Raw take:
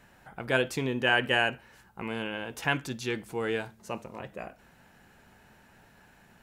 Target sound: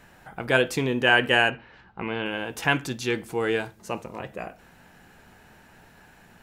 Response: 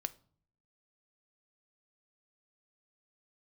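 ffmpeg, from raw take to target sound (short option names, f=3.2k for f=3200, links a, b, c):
-filter_complex "[0:a]asettb=1/sr,asplit=3[a][b][c];[a]atrim=end=1.504[d];[b]atrim=start=1.5:end=2.26,asetpts=PTS-STARTPTS,afade=t=in:d=0.004:c=qsin,afade=t=out:st=0.756:d=0.004:c=qsin,lowpass=f=4k:w=0.5412,lowpass=f=4k:w=1.3066[e];[c]atrim=start=2.256[f];[d][e]acrossfade=d=0.004:c1=hsin:c2=qsin[g];[g][f]acrossfade=d=0.004:c1=qsin:c2=hsin,asplit=2[h][i];[1:a]atrim=start_sample=2205,asetrate=79380,aresample=44100[j];[i][j]afir=irnorm=-1:irlink=0,volume=11dB[k];[h][k]amix=inputs=2:normalize=0,volume=-3.5dB"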